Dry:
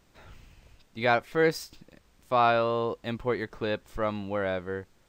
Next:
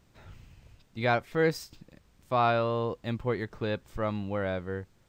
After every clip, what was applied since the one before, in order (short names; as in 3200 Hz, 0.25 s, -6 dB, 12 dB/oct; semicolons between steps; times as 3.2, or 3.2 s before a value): bell 110 Hz +7.5 dB 1.9 oct; gain -3 dB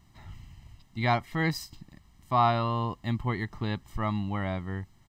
comb 1 ms, depth 80%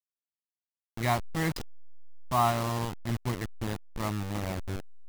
level-crossing sampler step -27.5 dBFS; gain -1.5 dB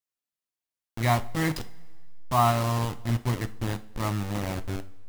two-slope reverb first 0.33 s, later 1.7 s, from -18 dB, DRR 10 dB; gain +2.5 dB